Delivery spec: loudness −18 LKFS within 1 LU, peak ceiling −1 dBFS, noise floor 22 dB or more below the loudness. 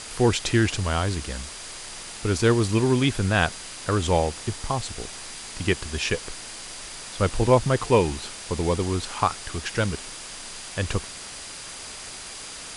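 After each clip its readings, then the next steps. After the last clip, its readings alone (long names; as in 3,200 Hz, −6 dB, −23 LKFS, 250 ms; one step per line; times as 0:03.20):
interfering tone 4,800 Hz; level of the tone −47 dBFS; background noise floor −39 dBFS; target noise floor −48 dBFS; integrated loudness −26.0 LKFS; sample peak −5.5 dBFS; target loudness −18.0 LKFS
→ notch filter 4,800 Hz, Q 30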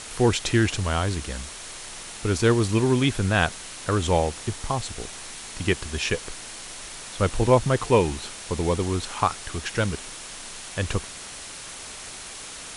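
interfering tone none found; background noise floor −39 dBFS; target noise floor −47 dBFS
→ broadband denoise 8 dB, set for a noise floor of −39 dBFS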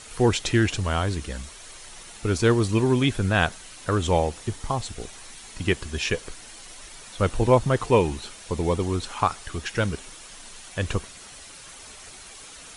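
background noise floor −44 dBFS; target noise floor −47 dBFS
→ broadband denoise 6 dB, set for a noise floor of −44 dBFS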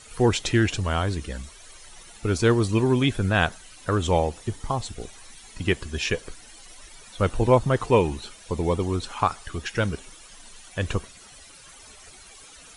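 background noise floor −48 dBFS; integrated loudness −24.5 LKFS; sample peak −5.5 dBFS; target loudness −18.0 LKFS
→ level +6.5 dB
brickwall limiter −1 dBFS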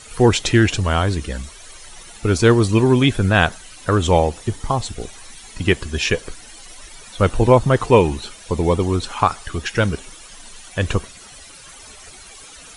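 integrated loudness −18.5 LKFS; sample peak −1.0 dBFS; background noise floor −42 dBFS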